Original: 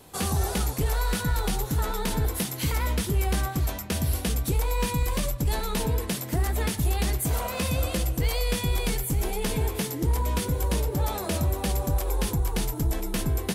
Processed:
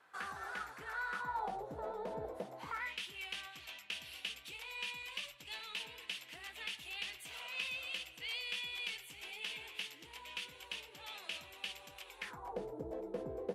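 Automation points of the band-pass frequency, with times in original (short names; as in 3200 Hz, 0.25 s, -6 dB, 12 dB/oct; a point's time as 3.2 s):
band-pass, Q 4
1.08 s 1500 Hz
1.62 s 600 Hz
2.51 s 600 Hz
2.95 s 2800 Hz
12.16 s 2800 Hz
12.59 s 510 Hz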